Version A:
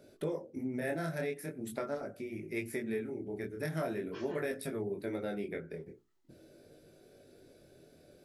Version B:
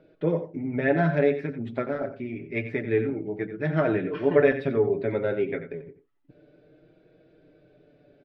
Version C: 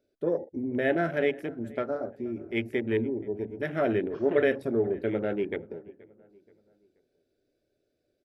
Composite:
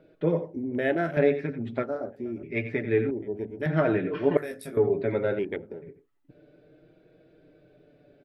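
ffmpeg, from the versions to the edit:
-filter_complex "[2:a]asplit=4[s0][s1][s2][s3];[1:a]asplit=6[s4][s5][s6][s7][s8][s9];[s4]atrim=end=0.542[s10];[s0]atrim=start=0.538:end=1.172[s11];[s5]atrim=start=1.168:end=1.832[s12];[s1]atrim=start=1.828:end=2.432[s13];[s6]atrim=start=2.428:end=3.112[s14];[s2]atrim=start=3.108:end=3.662[s15];[s7]atrim=start=3.658:end=4.372[s16];[0:a]atrim=start=4.368:end=4.772[s17];[s8]atrim=start=4.768:end=5.392[s18];[s3]atrim=start=5.388:end=5.822[s19];[s9]atrim=start=5.818[s20];[s10][s11]acrossfade=d=0.004:c1=hsin:c2=hsin[s21];[s21][s12]acrossfade=d=0.004:c1=hsin:c2=hsin[s22];[s22][s13]acrossfade=d=0.004:c1=hsin:c2=hsin[s23];[s23][s14]acrossfade=d=0.004:c1=hsin:c2=hsin[s24];[s24][s15]acrossfade=d=0.004:c1=hsin:c2=hsin[s25];[s25][s16]acrossfade=d=0.004:c1=hsin:c2=hsin[s26];[s26][s17]acrossfade=d=0.004:c1=hsin:c2=hsin[s27];[s27][s18]acrossfade=d=0.004:c1=hsin:c2=hsin[s28];[s28][s19]acrossfade=d=0.004:c1=hsin:c2=hsin[s29];[s29][s20]acrossfade=d=0.004:c1=hsin:c2=hsin"

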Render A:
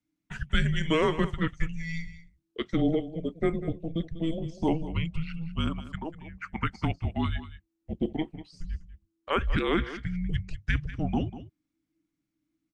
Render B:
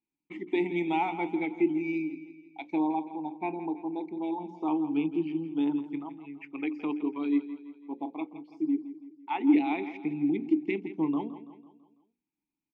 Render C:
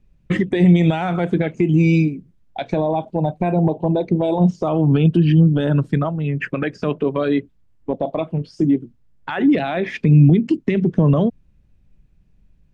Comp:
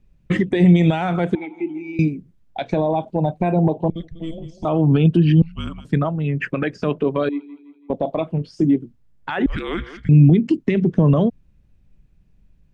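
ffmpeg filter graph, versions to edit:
-filter_complex "[1:a]asplit=2[s0][s1];[0:a]asplit=3[s2][s3][s4];[2:a]asplit=6[s5][s6][s7][s8][s9][s10];[s5]atrim=end=1.352[s11];[s0]atrim=start=1.348:end=1.992[s12];[s6]atrim=start=1.988:end=3.902[s13];[s2]atrim=start=3.898:end=4.652[s14];[s7]atrim=start=4.648:end=5.422[s15];[s3]atrim=start=5.418:end=5.852[s16];[s8]atrim=start=5.848:end=7.292[s17];[s1]atrim=start=7.288:end=7.902[s18];[s9]atrim=start=7.898:end=9.462[s19];[s4]atrim=start=9.458:end=10.092[s20];[s10]atrim=start=10.088[s21];[s11][s12]acrossfade=d=0.004:c1=hsin:c2=hsin[s22];[s22][s13]acrossfade=d=0.004:c1=hsin:c2=hsin[s23];[s23][s14]acrossfade=d=0.004:c1=hsin:c2=hsin[s24];[s24][s15]acrossfade=d=0.004:c1=hsin:c2=hsin[s25];[s25][s16]acrossfade=d=0.004:c1=hsin:c2=hsin[s26];[s26][s17]acrossfade=d=0.004:c1=hsin:c2=hsin[s27];[s27][s18]acrossfade=d=0.004:c1=hsin:c2=hsin[s28];[s28][s19]acrossfade=d=0.004:c1=hsin:c2=hsin[s29];[s29][s20]acrossfade=d=0.004:c1=hsin:c2=hsin[s30];[s30][s21]acrossfade=d=0.004:c1=hsin:c2=hsin"

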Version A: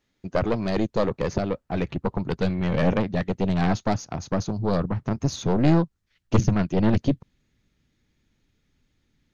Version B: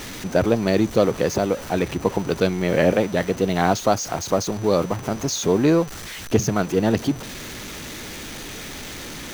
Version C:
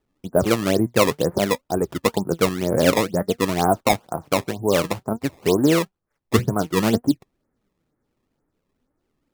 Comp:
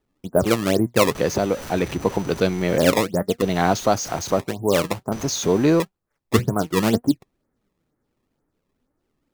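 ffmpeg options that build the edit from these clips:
-filter_complex "[1:a]asplit=3[s0][s1][s2];[2:a]asplit=4[s3][s4][s5][s6];[s3]atrim=end=1.152[s7];[s0]atrim=start=1.148:end=2.782[s8];[s4]atrim=start=2.778:end=3.422[s9];[s1]atrim=start=3.418:end=4.392[s10];[s5]atrim=start=4.388:end=5.122[s11];[s2]atrim=start=5.118:end=5.802[s12];[s6]atrim=start=5.798[s13];[s7][s8]acrossfade=d=0.004:c1=hsin:c2=hsin[s14];[s14][s9]acrossfade=d=0.004:c1=hsin:c2=hsin[s15];[s15][s10]acrossfade=d=0.004:c1=hsin:c2=hsin[s16];[s16][s11]acrossfade=d=0.004:c1=hsin:c2=hsin[s17];[s17][s12]acrossfade=d=0.004:c1=hsin:c2=hsin[s18];[s18][s13]acrossfade=d=0.004:c1=hsin:c2=hsin"

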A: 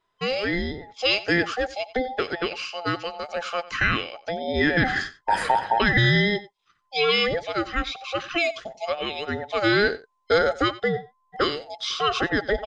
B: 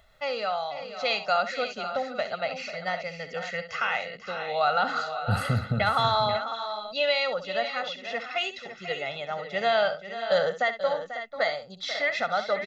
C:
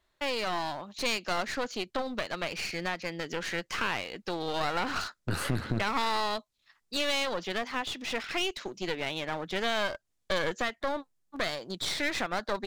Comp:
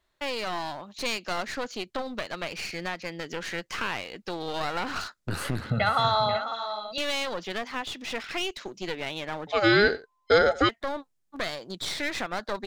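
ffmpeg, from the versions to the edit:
-filter_complex "[2:a]asplit=3[s0][s1][s2];[s0]atrim=end=5.702[s3];[1:a]atrim=start=5.698:end=6.982[s4];[s1]atrim=start=6.978:end=9.472[s5];[0:a]atrim=start=9.468:end=10.692[s6];[s2]atrim=start=10.688[s7];[s3][s4]acrossfade=d=0.004:c1=hsin:c2=hsin[s8];[s8][s5]acrossfade=d=0.004:c1=hsin:c2=hsin[s9];[s9][s6]acrossfade=d=0.004:c1=hsin:c2=hsin[s10];[s10][s7]acrossfade=d=0.004:c1=hsin:c2=hsin"

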